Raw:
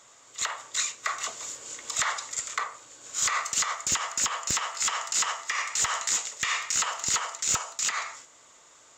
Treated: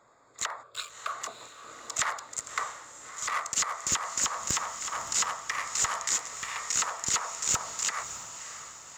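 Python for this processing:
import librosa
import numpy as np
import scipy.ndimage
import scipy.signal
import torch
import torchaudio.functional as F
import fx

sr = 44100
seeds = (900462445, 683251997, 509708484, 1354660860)

p1 = fx.wiener(x, sr, points=15)
p2 = fx.chopper(p1, sr, hz=0.61, depth_pct=60, duty_pct=90)
p3 = fx.fixed_phaser(p2, sr, hz=1300.0, stages=8, at=(0.63, 1.15))
y = p3 + fx.echo_diffused(p3, sr, ms=617, feedback_pct=50, wet_db=-11.0, dry=0)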